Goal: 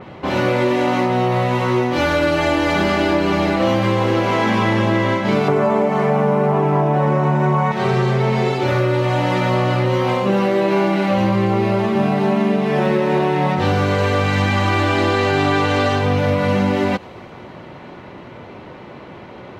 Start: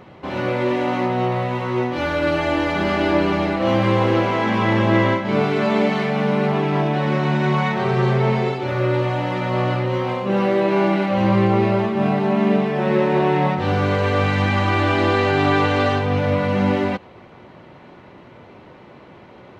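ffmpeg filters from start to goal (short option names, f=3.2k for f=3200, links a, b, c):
-filter_complex "[0:a]asettb=1/sr,asplit=3[a][b][c];[a]atrim=end=5.484[d];[b]atrim=start=5.48:end=7.72,asetpts=PTS-STARTPTS,afade=t=in:d=0.004:c=qsin,afade=t=out:st=2.236:d=0.004:c=qsin,equalizer=f=125:t=o:w=1:g=9,equalizer=f=500:t=o:w=1:g=8,equalizer=f=1k:t=o:w=1:g=9,equalizer=f=4k:t=o:w=1:g=-10[e];[c]atrim=start=7.716[f];[d][e]acrossfade=d=0.004:c1=hsin:c2=qsin[g];[g][f]acrossfade=d=0.004:c1=qsin:c2=hsin,acompressor=threshold=-20dB:ratio=10,adynamicequalizer=threshold=0.00355:dfrequency=4800:dqfactor=0.7:tfrequency=4800:tqfactor=0.7:attack=5:release=100:ratio=0.375:range=4:mode=boostabove:tftype=highshelf,volume=7dB"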